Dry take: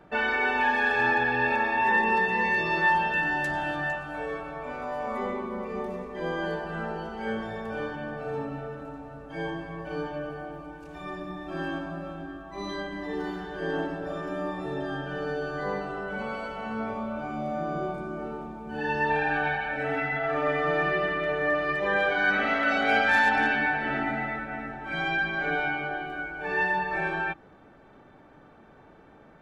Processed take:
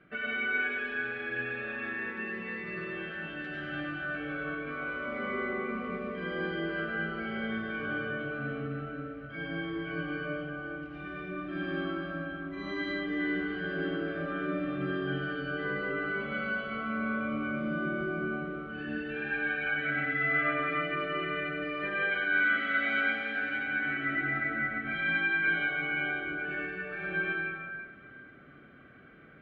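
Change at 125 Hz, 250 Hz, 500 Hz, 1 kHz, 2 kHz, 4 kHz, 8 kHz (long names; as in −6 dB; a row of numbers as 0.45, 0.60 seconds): −2.5 dB, −1.0 dB, −6.5 dB, −11.5 dB, −2.5 dB, −3.5 dB, can't be measured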